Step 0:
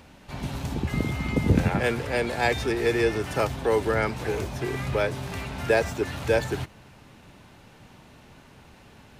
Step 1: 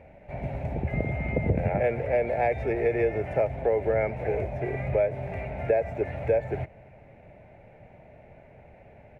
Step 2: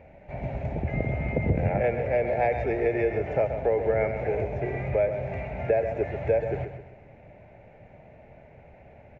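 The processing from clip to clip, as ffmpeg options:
ffmpeg -i in.wav -af "firequalizer=gain_entry='entry(120,0);entry(270,-7);entry(620,10);entry(1100,-15);entry(2200,1);entry(3100,-20);entry(4500,-27)':delay=0.05:min_phase=1,acompressor=threshold=-20dB:ratio=6" out.wav
ffmpeg -i in.wav -af "aecho=1:1:131|262|393|524:0.355|0.135|0.0512|0.0195,aresample=16000,aresample=44100" out.wav

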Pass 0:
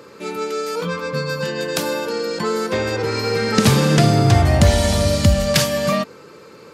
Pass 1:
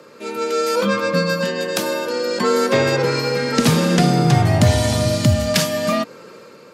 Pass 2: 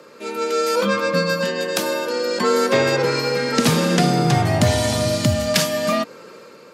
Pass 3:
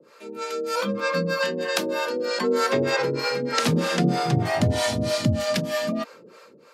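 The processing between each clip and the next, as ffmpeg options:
ffmpeg -i in.wav -af "dynaudnorm=framelen=110:gausssize=9:maxgain=9dB,afreqshift=27,volume=-2dB" out.wav
ffmpeg -i in.wav -af "lowshelf=frequency=130:gain=-8" out.wav
ffmpeg -i in.wav -filter_complex "[0:a]acrossover=split=180|5000[link_01][link_02][link_03];[link_02]dynaudnorm=framelen=450:gausssize=5:maxgain=11.5dB[link_04];[link_01][link_04][link_03]amix=inputs=3:normalize=0,acrossover=split=500[link_05][link_06];[link_05]aeval=exprs='val(0)*(1-1/2+1/2*cos(2*PI*3.2*n/s))':channel_layout=same[link_07];[link_06]aeval=exprs='val(0)*(1-1/2-1/2*cos(2*PI*3.2*n/s))':channel_layout=same[link_08];[link_07][link_08]amix=inputs=2:normalize=0,volume=-3.5dB" out.wav

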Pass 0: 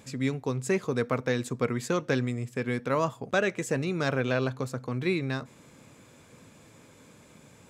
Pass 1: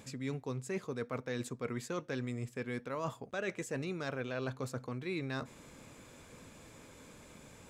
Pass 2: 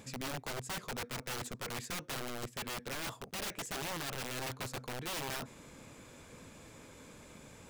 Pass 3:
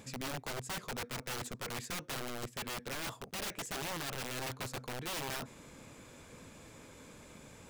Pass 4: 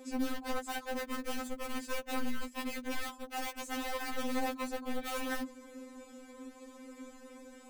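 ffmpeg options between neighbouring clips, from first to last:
ffmpeg -i in.wav -af "asubboost=boost=5:cutoff=51,areverse,acompressor=threshold=-35dB:ratio=6,areverse" out.wav
ffmpeg -i in.wav -af "aeval=exprs='(mod(56.2*val(0)+1,2)-1)/56.2':channel_layout=same,volume=1dB" out.wav
ffmpeg -i in.wav -af anull out.wav
ffmpeg -i in.wav -filter_complex "[0:a]asplit=2[link_01][link_02];[link_02]adynamicsmooth=sensitivity=6.5:basefreq=1400,volume=1.5dB[link_03];[link_01][link_03]amix=inputs=2:normalize=0,afftfilt=real='re*3.46*eq(mod(b,12),0)':imag='im*3.46*eq(mod(b,12),0)':win_size=2048:overlap=0.75" out.wav

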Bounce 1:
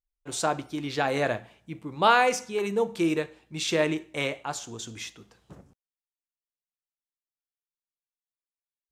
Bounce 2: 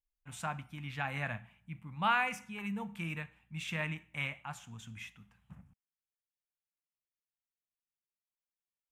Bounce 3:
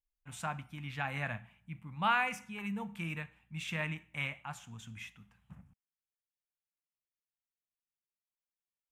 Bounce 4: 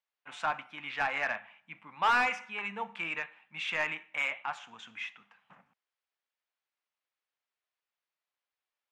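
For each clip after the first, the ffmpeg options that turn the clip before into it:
ffmpeg -i in.wav -af "firequalizer=gain_entry='entry(200,0);entry(350,-26);entry(820,-7);entry(2500,-1);entry(4300,-19);entry(11000,-6)':delay=0.05:min_phase=1,volume=-3dB" out.wav
ffmpeg -i in.wav -af anull out.wav
ffmpeg -i in.wav -filter_complex "[0:a]highpass=380,lowpass=4800,asplit=2[link_01][link_02];[link_02]highpass=frequency=720:poles=1,volume=17dB,asoftclip=type=tanh:threshold=-17dB[link_03];[link_01][link_03]amix=inputs=2:normalize=0,lowpass=frequency=2400:poles=1,volume=-6dB" out.wav

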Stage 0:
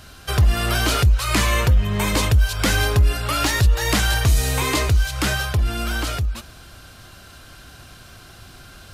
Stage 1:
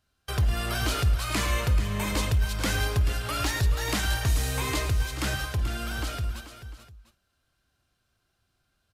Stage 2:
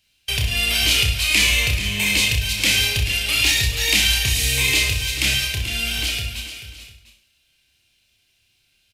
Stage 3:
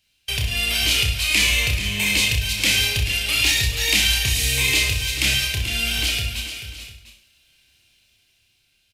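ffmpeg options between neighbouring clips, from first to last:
ffmpeg -i in.wav -filter_complex "[0:a]agate=range=-23dB:threshold=-34dB:ratio=16:detection=peak,asplit=2[link_01][link_02];[link_02]aecho=0:1:108|435|699:0.2|0.266|0.112[link_03];[link_01][link_03]amix=inputs=2:normalize=0,volume=-8.5dB" out.wav
ffmpeg -i in.wav -af "highshelf=frequency=1800:width_type=q:width=3:gain=11,aecho=1:1:30|63|99.3|139.2|183.2:0.631|0.398|0.251|0.158|0.1,volume=-1dB" out.wav
ffmpeg -i in.wav -af "dynaudnorm=framelen=330:gausssize=9:maxgain=9dB,volume=-2dB" out.wav

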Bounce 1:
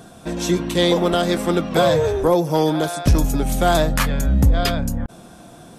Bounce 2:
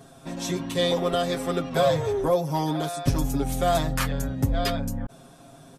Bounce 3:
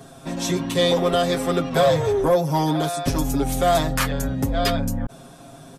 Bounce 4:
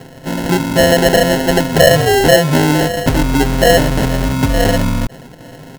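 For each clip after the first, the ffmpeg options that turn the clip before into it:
ffmpeg -i in.wav -af "aecho=1:1:7.4:0.97,volume=-9dB" out.wav
ffmpeg -i in.wav -filter_complex "[0:a]acrossover=split=220[link_01][link_02];[link_01]alimiter=level_in=1dB:limit=-24dB:level=0:latency=1,volume=-1dB[link_03];[link_03][link_02]amix=inputs=2:normalize=0,acontrast=40,asoftclip=type=tanh:threshold=-8dB" out.wav
ffmpeg -i in.wav -filter_complex "[0:a]asplit=2[link_01][link_02];[link_02]adynamicsmooth=sensitivity=2:basefreq=1200,volume=1dB[link_03];[link_01][link_03]amix=inputs=2:normalize=0,acrusher=samples=37:mix=1:aa=0.000001,volume=2.5dB" out.wav

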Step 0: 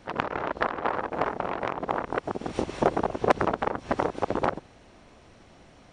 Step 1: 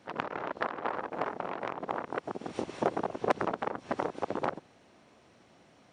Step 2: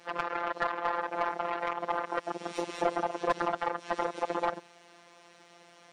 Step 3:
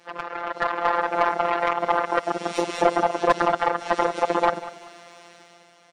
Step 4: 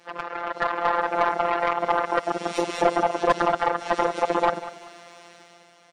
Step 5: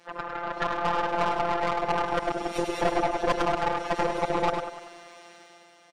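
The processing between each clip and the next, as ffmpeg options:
ffmpeg -i in.wav -af "highpass=130,volume=-6dB" out.wav
ffmpeg -i in.wav -filter_complex "[0:a]crystalizer=i=3.5:c=0,afftfilt=real='hypot(re,im)*cos(PI*b)':imag='0':win_size=1024:overlap=0.75,asplit=2[link_01][link_02];[link_02]highpass=frequency=720:poles=1,volume=21dB,asoftclip=type=tanh:threshold=-6.5dB[link_03];[link_01][link_03]amix=inputs=2:normalize=0,lowpass=frequency=1900:poles=1,volume=-6dB,volume=-5dB" out.wav
ffmpeg -i in.wav -af "dynaudnorm=framelen=100:gausssize=13:maxgain=10dB,aecho=1:1:193|386|579:0.158|0.0507|0.0162" out.wav
ffmpeg -i in.wav -af "asoftclip=type=tanh:threshold=-6.5dB" out.wav
ffmpeg -i in.wav -af "aeval=exprs='(tanh(7.94*val(0)+0.45)-tanh(0.45))/7.94':channel_layout=same,aecho=1:1:102:0.473" out.wav

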